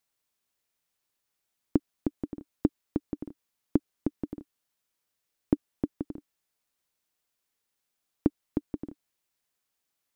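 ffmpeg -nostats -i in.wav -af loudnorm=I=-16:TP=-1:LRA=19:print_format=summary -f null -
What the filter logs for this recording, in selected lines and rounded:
Input Integrated:    -34.3 LUFS
Input True Peak:      -8.2 dBTP
Input LRA:             4.3 LU
Input Threshold:     -44.9 LUFS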